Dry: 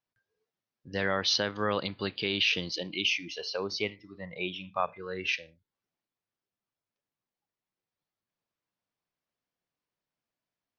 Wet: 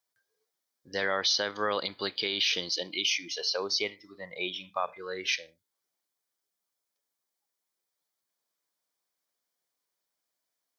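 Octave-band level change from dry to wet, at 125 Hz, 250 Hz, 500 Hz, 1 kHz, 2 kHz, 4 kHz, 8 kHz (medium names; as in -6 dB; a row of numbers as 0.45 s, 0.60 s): -10.0 dB, -5.5 dB, -0.5 dB, 0.0 dB, -1.0 dB, +2.0 dB, no reading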